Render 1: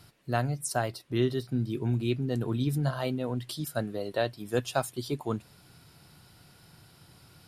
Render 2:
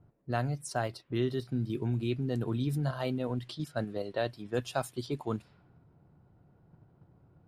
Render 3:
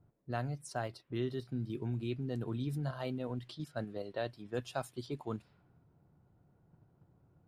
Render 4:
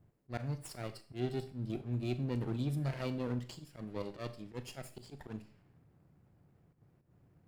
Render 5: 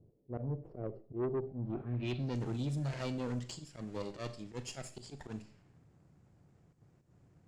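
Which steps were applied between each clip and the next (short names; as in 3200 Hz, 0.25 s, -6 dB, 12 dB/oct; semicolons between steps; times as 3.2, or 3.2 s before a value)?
low-pass opened by the level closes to 580 Hz, open at -28 dBFS; high shelf 6600 Hz -6 dB; in parallel at +1.5 dB: level quantiser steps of 11 dB; on the sum: gain -7 dB
high shelf 7600 Hz -3.5 dB; gain -5.5 dB
minimum comb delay 0.4 ms; auto swell 0.122 s; Schroeder reverb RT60 0.44 s, combs from 29 ms, DRR 11 dB; gain +1.5 dB
block floating point 7-bit; low-pass sweep 460 Hz -> 7200 Hz, 1.43–2.4; soft clip -31 dBFS, distortion -13 dB; gain +1.5 dB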